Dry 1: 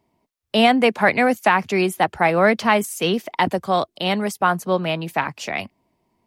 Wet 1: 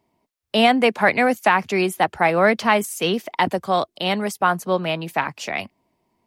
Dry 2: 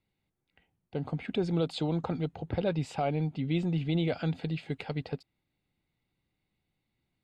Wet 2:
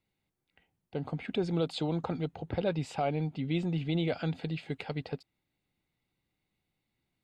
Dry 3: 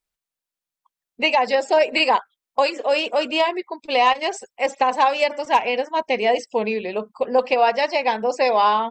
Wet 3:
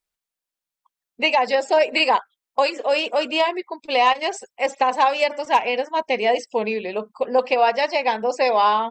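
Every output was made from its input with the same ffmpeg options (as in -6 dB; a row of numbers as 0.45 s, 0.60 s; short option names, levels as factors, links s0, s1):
-af "lowshelf=f=210:g=-3.5"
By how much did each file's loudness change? -0.5 LU, -1.5 LU, -0.5 LU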